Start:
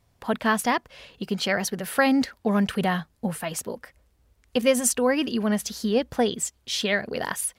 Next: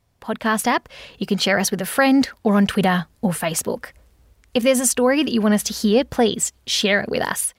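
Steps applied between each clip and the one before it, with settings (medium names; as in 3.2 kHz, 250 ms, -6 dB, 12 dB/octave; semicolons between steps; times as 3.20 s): level rider gain up to 11 dB; in parallel at +1 dB: peak limiter -9 dBFS, peak gain reduction 7.5 dB; on the sum: trim -7.5 dB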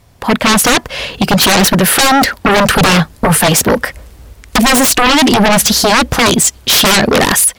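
sine folder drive 15 dB, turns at -5.5 dBFS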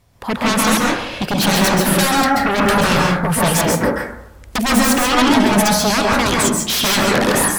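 plate-style reverb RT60 0.75 s, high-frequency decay 0.3×, pre-delay 120 ms, DRR -2.5 dB; trim -9.5 dB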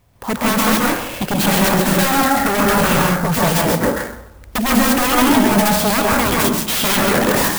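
sampling jitter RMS 0.046 ms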